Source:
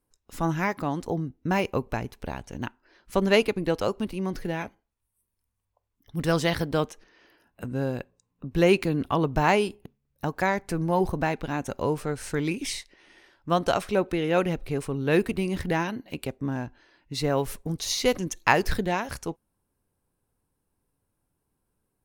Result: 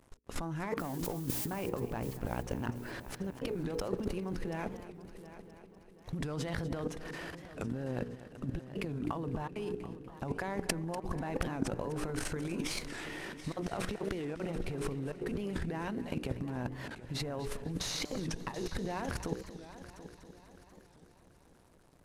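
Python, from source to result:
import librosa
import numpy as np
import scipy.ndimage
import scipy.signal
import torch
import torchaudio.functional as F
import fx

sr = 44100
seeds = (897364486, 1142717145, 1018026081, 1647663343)

y = fx.cvsd(x, sr, bps=64000)
y = fx.high_shelf(y, sr, hz=2300.0, db=-9.0)
y = fx.hum_notches(y, sr, base_hz=60, count=8)
y = fx.level_steps(y, sr, step_db=21)
y = fx.dmg_noise_colour(y, sr, seeds[0], colour='blue', level_db=-56.0, at=(0.79, 1.53), fade=0.02)
y = fx.over_compress(y, sr, threshold_db=-47.0, ratio=-0.5)
y = fx.echo_heads(y, sr, ms=244, heads='first and third', feedback_pct=55, wet_db=-15.0)
y = fx.record_warp(y, sr, rpm=45.0, depth_cents=160.0)
y = y * 10.0 ** (9.0 / 20.0)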